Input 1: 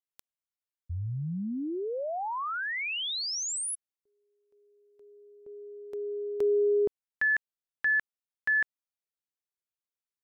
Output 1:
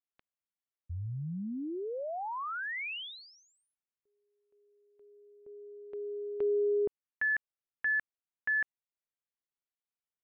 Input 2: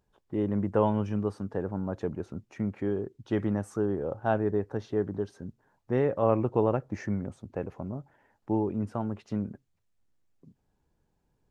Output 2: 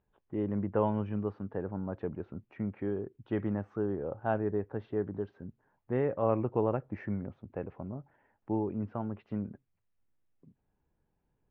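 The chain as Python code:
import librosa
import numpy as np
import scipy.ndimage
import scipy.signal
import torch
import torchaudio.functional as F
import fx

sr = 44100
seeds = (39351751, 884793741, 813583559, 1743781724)

y = scipy.signal.sosfilt(scipy.signal.butter(4, 2900.0, 'lowpass', fs=sr, output='sos'), x)
y = y * 10.0 ** (-4.0 / 20.0)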